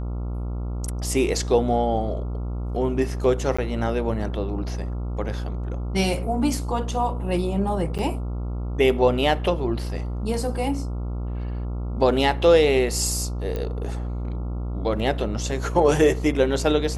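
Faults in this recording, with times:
buzz 60 Hz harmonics 23 -28 dBFS
3.57–3.58 gap 15 ms
7.98–7.99 gap 7.8 ms
13.56 pop -17 dBFS

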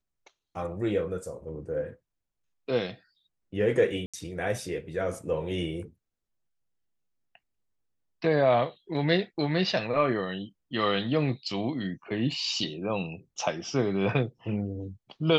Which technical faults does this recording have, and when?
4.06–4.14 gap 76 ms

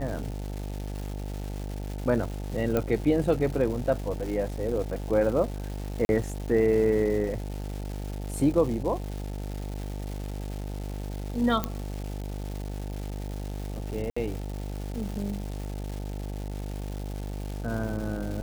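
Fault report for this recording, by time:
buzz 50 Hz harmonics 18 -34 dBFS
crackle 510/s -35 dBFS
2.77 pop -13 dBFS
6.05–6.09 gap 41 ms
11.64 pop -12 dBFS
14.1–14.16 gap 65 ms

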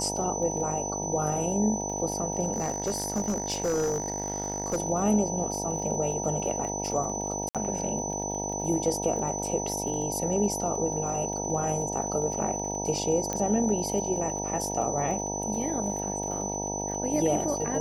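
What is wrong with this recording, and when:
buzz 50 Hz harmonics 19 -34 dBFS
crackle 32/s -36 dBFS
tone 6000 Hz -33 dBFS
2.52–4.78 clipped -23 dBFS
7.49–7.55 gap 57 ms
13.33 pop -16 dBFS

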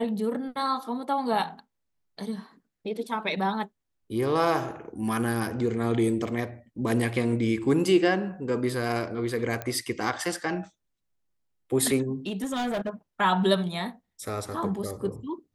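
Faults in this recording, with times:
9.62 pop -17 dBFS
12.27–12.89 clipped -25 dBFS

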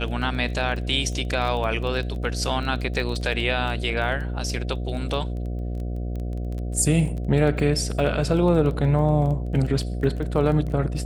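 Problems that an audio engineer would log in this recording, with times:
buzz 60 Hz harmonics 12 -28 dBFS
crackle 15/s -30 dBFS

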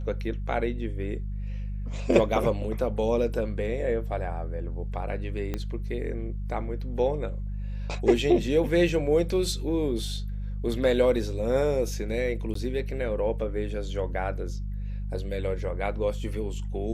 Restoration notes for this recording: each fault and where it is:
hum 50 Hz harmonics 4 -32 dBFS
5.54 pop -17 dBFS
12.54–12.55 gap

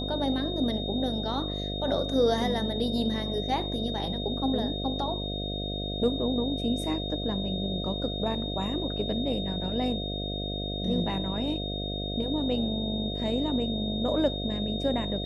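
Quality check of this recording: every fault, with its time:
buzz 50 Hz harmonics 14 -34 dBFS
tone 3700 Hz -35 dBFS

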